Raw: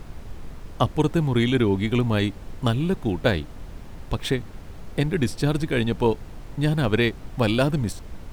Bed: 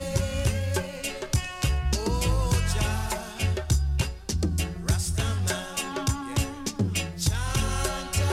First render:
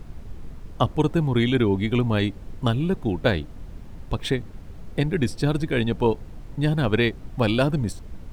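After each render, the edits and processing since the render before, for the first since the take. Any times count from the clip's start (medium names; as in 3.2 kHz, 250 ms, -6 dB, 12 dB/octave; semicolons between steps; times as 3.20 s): noise reduction 6 dB, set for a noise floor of -40 dBFS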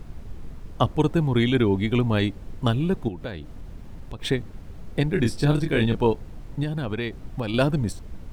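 3.08–4.22 s: compression 3:1, threshold -32 dBFS; 5.12–5.97 s: doubling 27 ms -5 dB; 6.63–7.54 s: compression, threshold -23 dBFS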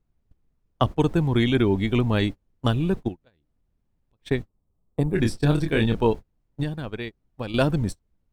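gate -26 dBFS, range -33 dB; 4.48–5.15 s: time-frequency box 1.3–7.2 kHz -14 dB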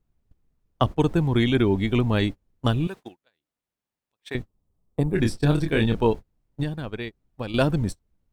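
2.87–4.35 s: high-pass 1.4 kHz 6 dB/octave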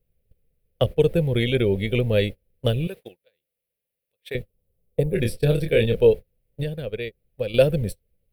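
FFT filter 170 Hz 0 dB, 300 Hz -9 dB, 510 Hz +12 dB, 720 Hz -6 dB, 1 kHz -16 dB, 2.4 kHz +4 dB, 4.7 kHz -2 dB, 6.8 kHz -9 dB, 11 kHz +10 dB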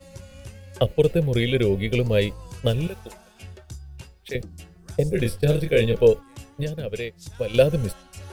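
add bed -15.5 dB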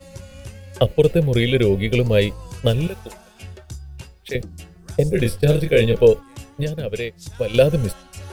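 trim +4 dB; peak limiter -3 dBFS, peak gain reduction 2.5 dB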